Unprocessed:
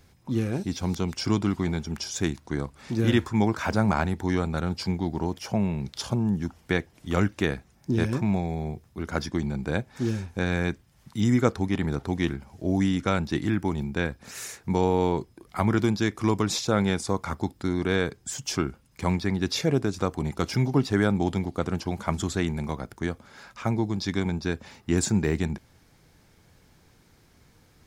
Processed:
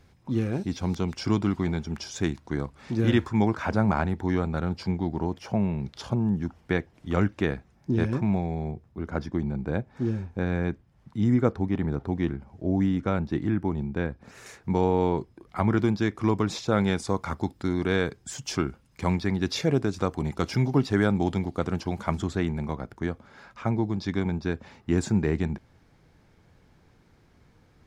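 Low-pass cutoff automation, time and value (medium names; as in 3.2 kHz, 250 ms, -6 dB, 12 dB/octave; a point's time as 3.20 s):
low-pass 6 dB/octave
3.5 kHz
from 3.55 s 2.1 kHz
from 8.71 s 1 kHz
from 14.46 s 2.3 kHz
from 16.72 s 5.2 kHz
from 22.18 s 2.1 kHz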